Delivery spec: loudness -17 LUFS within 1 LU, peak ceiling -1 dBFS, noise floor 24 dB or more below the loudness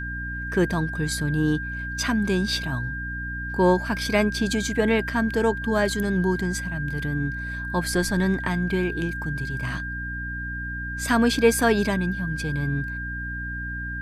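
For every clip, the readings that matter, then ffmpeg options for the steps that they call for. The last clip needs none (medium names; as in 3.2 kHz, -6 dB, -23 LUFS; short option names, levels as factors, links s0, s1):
hum 60 Hz; highest harmonic 300 Hz; hum level -32 dBFS; steady tone 1.6 kHz; tone level -31 dBFS; loudness -25.0 LUFS; peak level -5.0 dBFS; loudness target -17.0 LUFS
-> -af "bandreject=f=60:t=h:w=6,bandreject=f=120:t=h:w=6,bandreject=f=180:t=h:w=6,bandreject=f=240:t=h:w=6,bandreject=f=300:t=h:w=6"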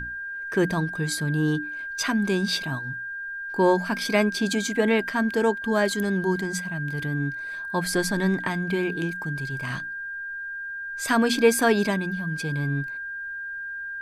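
hum not found; steady tone 1.6 kHz; tone level -31 dBFS
-> -af "bandreject=f=1600:w=30"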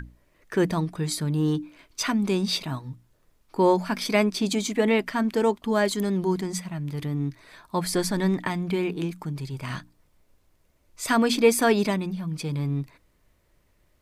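steady tone not found; loudness -25.5 LUFS; peak level -6.5 dBFS; loudness target -17.0 LUFS
-> -af "volume=2.66,alimiter=limit=0.891:level=0:latency=1"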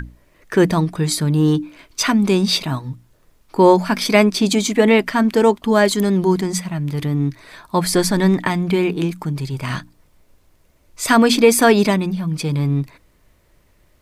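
loudness -17.0 LUFS; peak level -1.0 dBFS; noise floor -57 dBFS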